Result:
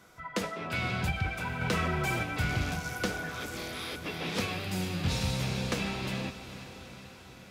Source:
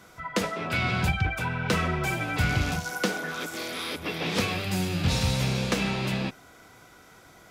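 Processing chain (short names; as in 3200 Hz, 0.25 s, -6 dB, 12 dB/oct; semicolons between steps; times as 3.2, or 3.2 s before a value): diffused feedback echo 0.458 s, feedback 63%, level -12 dB; 1.61–2.23 fast leveller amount 50%; gain -5.5 dB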